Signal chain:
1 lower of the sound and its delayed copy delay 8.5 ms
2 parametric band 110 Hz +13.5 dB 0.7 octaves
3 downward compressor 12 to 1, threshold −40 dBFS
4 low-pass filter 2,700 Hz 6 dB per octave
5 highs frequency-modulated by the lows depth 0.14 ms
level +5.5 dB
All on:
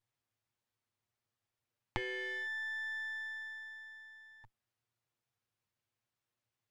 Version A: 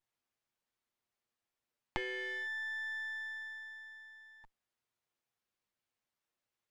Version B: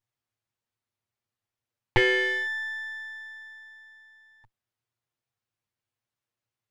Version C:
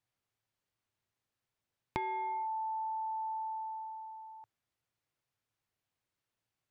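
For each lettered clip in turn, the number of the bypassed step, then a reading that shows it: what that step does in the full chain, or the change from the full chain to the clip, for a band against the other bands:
2, 125 Hz band −5.5 dB
3, average gain reduction 4.5 dB
1, 1 kHz band +22.5 dB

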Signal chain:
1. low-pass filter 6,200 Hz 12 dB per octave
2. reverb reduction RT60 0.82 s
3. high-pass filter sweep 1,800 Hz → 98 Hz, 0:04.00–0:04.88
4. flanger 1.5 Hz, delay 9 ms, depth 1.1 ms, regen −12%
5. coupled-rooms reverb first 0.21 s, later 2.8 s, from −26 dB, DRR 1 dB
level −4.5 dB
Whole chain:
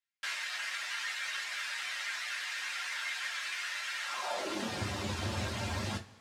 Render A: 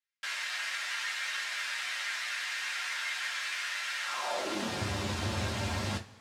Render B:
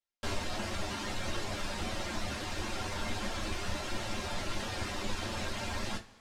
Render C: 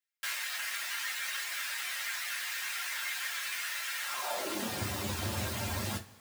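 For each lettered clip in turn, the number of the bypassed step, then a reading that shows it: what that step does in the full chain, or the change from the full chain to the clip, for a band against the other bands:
2, change in integrated loudness +2.5 LU
3, 2 kHz band −6.0 dB
1, 8 kHz band +5.5 dB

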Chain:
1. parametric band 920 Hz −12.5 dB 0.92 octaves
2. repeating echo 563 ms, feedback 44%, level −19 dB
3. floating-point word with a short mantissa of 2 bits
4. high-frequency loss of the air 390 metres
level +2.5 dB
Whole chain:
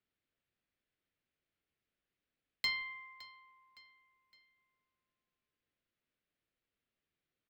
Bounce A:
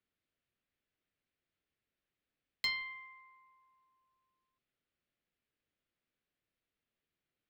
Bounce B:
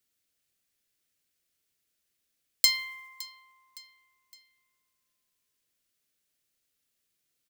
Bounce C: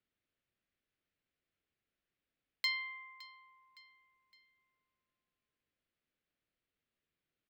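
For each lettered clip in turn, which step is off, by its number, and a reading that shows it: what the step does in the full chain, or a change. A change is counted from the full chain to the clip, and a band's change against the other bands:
2, change in momentary loudness spread −3 LU
4, 8 kHz band +24.0 dB
3, distortion level −20 dB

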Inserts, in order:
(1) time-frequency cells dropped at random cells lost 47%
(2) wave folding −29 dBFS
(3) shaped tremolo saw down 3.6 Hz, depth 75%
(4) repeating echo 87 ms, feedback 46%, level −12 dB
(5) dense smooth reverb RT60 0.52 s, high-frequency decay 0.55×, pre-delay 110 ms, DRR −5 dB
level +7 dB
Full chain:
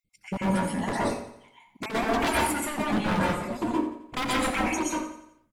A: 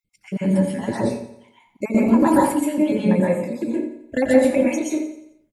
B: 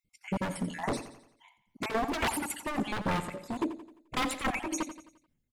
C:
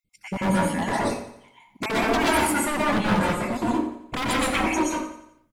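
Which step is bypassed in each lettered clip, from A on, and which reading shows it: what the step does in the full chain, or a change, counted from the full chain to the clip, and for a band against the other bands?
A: 2, change in crest factor +1.5 dB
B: 5, change in crest factor −2.0 dB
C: 3, change in momentary loudness spread +2 LU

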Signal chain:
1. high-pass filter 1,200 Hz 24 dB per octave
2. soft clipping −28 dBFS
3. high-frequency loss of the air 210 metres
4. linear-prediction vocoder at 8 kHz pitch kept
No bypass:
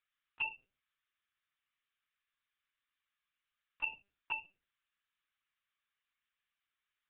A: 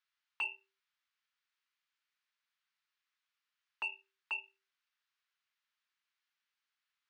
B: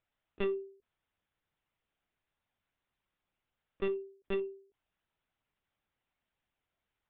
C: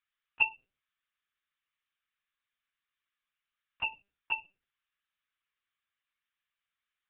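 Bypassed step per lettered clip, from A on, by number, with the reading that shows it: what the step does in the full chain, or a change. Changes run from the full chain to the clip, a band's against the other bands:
4, change in crest factor −6.0 dB
1, change in crest factor −4.5 dB
2, distortion level −5 dB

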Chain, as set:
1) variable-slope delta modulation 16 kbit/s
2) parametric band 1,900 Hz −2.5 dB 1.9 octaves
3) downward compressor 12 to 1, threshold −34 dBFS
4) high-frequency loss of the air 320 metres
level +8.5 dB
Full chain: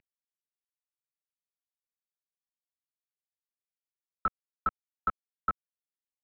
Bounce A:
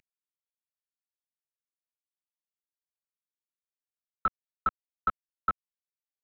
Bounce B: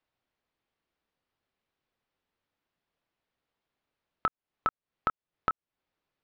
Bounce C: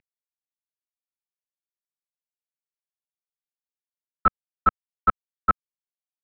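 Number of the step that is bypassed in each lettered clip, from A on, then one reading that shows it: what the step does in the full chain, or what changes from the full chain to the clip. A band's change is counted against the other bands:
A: 4, 2 kHz band +1.5 dB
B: 1, 500 Hz band +4.5 dB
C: 3, average gain reduction 10.0 dB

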